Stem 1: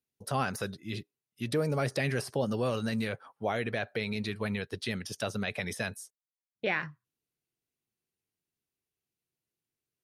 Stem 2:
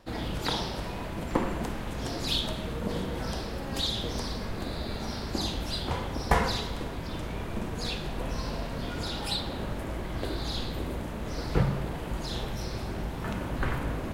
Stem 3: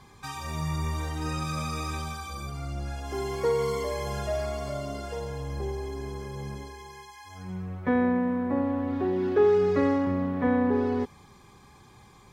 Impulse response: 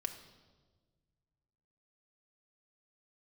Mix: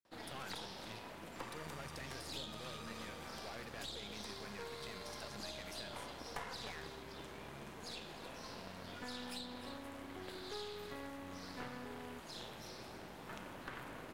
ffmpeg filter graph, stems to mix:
-filter_complex "[0:a]volume=29dB,asoftclip=hard,volume=-29dB,volume=-8.5dB[a];[1:a]highpass=f=300:p=1,adelay=50,volume=-6dB,asplit=2[b][c];[c]volume=-14.5dB[d];[2:a]adelay=1150,volume=-12.5dB[e];[d]aecho=0:1:303:1[f];[a][b][e][f]amix=inputs=4:normalize=0,acrossover=split=110|950[g][h][i];[g]acompressor=threshold=-58dB:ratio=4[j];[h]acompressor=threshold=-45dB:ratio=4[k];[i]acompressor=threshold=-41dB:ratio=4[l];[j][k][l]amix=inputs=3:normalize=0,aeval=exprs='(tanh(44.7*val(0)+0.8)-tanh(0.8))/44.7':c=same"

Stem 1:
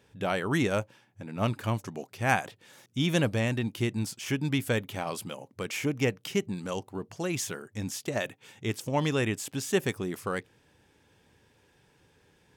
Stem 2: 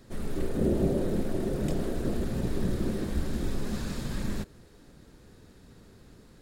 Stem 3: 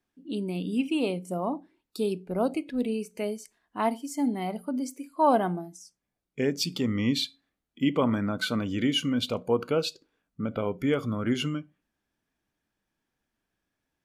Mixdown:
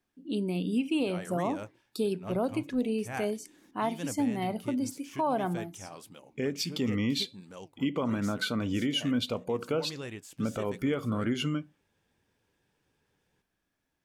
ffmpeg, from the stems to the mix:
-filter_complex "[0:a]flanger=delay=2:depth=8.7:regen=78:speed=1.5:shape=triangular,adelay=850,volume=-8dB[a];[1:a]acompressor=threshold=-30dB:ratio=6,asplit=3[b][c][d];[b]bandpass=f=300:t=q:w=8,volume=0dB[e];[c]bandpass=f=870:t=q:w=8,volume=-6dB[f];[d]bandpass=f=2.24k:t=q:w=8,volume=-9dB[g];[e][f][g]amix=inputs=3:normalize=0,adelay=2500,volume=-16.5dB[h];[2:a]volume=0.5dB[i];[a][h][i]amix=inputs=3:normalize=0,alimiter=limit=-20dB:level=0:latency=1:release=203"

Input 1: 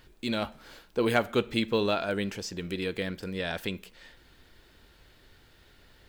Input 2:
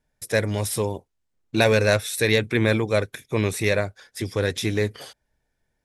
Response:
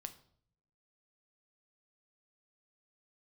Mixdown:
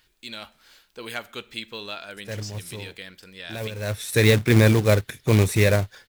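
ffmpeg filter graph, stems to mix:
-filter_complex "[0:a]tiltshelf=f=1.1k:g=-8.5,volume=-7.5dB,asplit=2[a][b];[1:a]lowshelf=f=160:g=7.5,acrusher=bits=3:mode=log:mix=0:aa=0.000001,adelay=1950,volume=0.5dB[c];[b]apad=whole_len=343671[d];[c][d]sidechaincompress=threshold=-53dB:ratio=6:attack=5.7:release=225[e];[a][e]amix=inputs=2:normalize=0,lowshelf=f=190:g=3"

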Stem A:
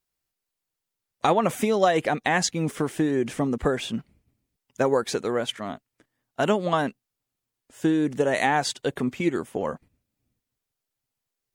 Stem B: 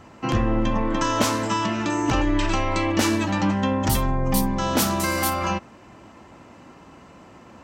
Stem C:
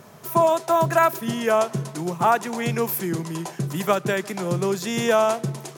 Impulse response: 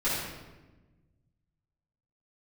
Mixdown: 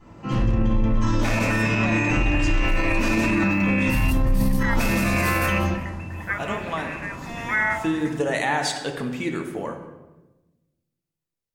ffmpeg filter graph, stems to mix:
-filter_complex "[0:a]lowshelf=f=480:g=-11,volume=-9.5dB,asplit=3[a][b][c];[b]volume=-13dB[d];[1:a]volume=1.5dB,asplit=3[e][f][g];[f]volume=-14.5dB[h];[g]volume=-11dB[i];[2:a]lowshelf=f=630:t=q:w=3:g=-11.5,adelay=2400,volume=-10.5dB,asplit=2[j][k];[k]volume=-18dB[l];[c]apad=whole_len=336640[m];[e][m]sidechaingate=range=-33dB:threshold=-59dB:ratio=16:detection=peak[n];[n][j]amix=inputs=2:normalize=0,lowpass=f=2.4k:t=q:w=0.5098,lowpass=f=2.4k:t=q:w=0.6013,lowpass=f=2.4k:t=q:w=0.9,lowpass=f=2.4k:t=q:w=2.563,afreqshift=-2800,alimiter=limit=-17.5dB:level=0:latency=1,volume=0dB[o];[3:a]atrim=start_sample=2205[p];[d][h][l]amix=inputs=3:normalize=0[q];[q][p]afir=irnorm=-1:irlink=0[r];[i]aecho=0:1:185|370|555:1|0.16|0.0256[s];[a][o][r][s]amix=inputs=4:normalize=0,lowshelf=f=210:g=9.5,dynaudnorm=f=440:g=11:m=11.5dB,alimiter=limit=-12.5dB:level=0:latency=1:release=36"

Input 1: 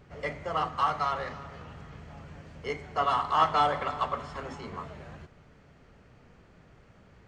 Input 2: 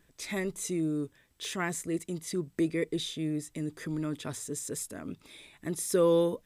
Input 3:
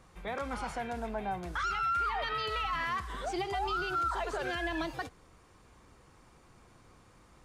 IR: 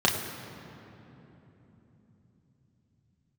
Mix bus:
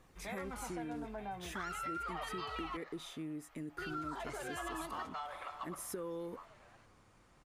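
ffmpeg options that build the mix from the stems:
-filter_complex "[0:a]highpass=f=600:w=0.5412,highpass=f=600:w=1.3066,adelay=1600,volume=-12dB[a];[1:a]equalizer=f=125:t=o:w=1:g=-9,equalizer=f=500:t=o:w=1:g=-5,equalizer=f=4k:t=o:w=1:g=-9,equalizer=f=8k:t=o:w=1:g=-8,volume=-2.5dB[b];[2:a]flanger=delay=0.3:depth=9:regen=-63:speed=0.36:shape=sinusoidal,volume=-2dB,asplit=3[c][d][e];[c]atrim=end=2.77,asetpts=PTS-STARTPTS,afade=t=out:st=2.766:d=0.004:c=hsin[f];[d]atrim=start=2.77:end=3.78,asetpts=PTS-STARTPTS,volume=0[g];[e]atrim=start=3.78,asetpts=PTS-STARTPTS,afade=t=in:d=0.004:c=hsin[h];[f][g][h]concat=n=3:v=0:a=1[i];[a][b]amix=inputs=2:normalize=0,acompressor=threshold=-36dB:ratio=6,volume=0dB[j];[i][j]amix=inputs=2:normalize=0,acompressor=threshold=-41dB:ratio=2"

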